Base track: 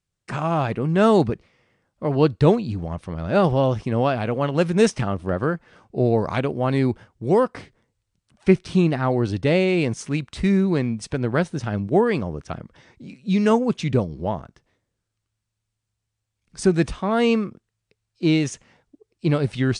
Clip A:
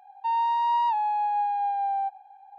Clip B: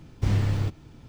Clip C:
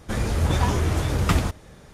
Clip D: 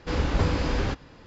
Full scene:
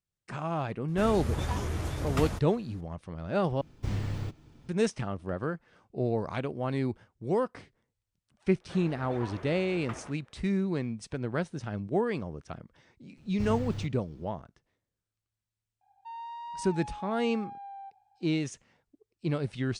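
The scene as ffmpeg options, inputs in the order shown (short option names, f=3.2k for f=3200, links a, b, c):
-filter_complex "[3:a]asplit=2[a][b];[2:a]asplit=2[c][d];[0:a]volume=-10dB[e];[c]equalizer=f=93:w=6.4:g=-4.5[f];[b]acrossover=split=330 2800:gain=0.112 1 0.0794[g][h][i];[g][h][i]amix=inputs=3:normalize=0[j];[1:a]highshelf=f=2.3k:g=6[k];[e]asplit=2[l][m];[l]atrim=end=3.614[n];[f]atrim=end=1.08,asetpts=PTS-STARTPTS,volume=-7dB[o];[m]atrim=start=4.686[p];[a]atrim=end=1.93,asetpts=PTS-STARTPTS,volume=-10dB,afade=t=in:d=0.004:c=hsin,afade=t=out:st=1.926:d=0.004:c=hsin,adelay=880[q];[j]atrim=end=1.93,asetpts=PTS-STARTPTS,volume=-14.5dB,afade=t=in:d=0.004:c=hsin,afade=t=out:st=1.926:d=0.004:c=hsin,adelay=8600[r];[d]atrim=end=1.08,asetpts=PTS-STARTPTS,volume=-11dB,afade=t=in:d=0.004:c=hsin,afade=t=out:st=1.076:d=0.004:c=hsin,adelay=13170[s];[k]atrim=end=2.58,asetpts=PTS-STARTPTS,volume=-17.5dB,afade=t=in:d=0.004:c=hsin,afade=t=out:st=2.576:d=0.004:c=hsin,adelay=15810[t];[n][o]acrossfade=d=0.004:c1=hsin:c2=hsin[u];[u][p]acrossfade=d=0.004:c1=hsin:c2=hsin[v];[v][q][r][s][t]amix=inputs=5:normalize=0"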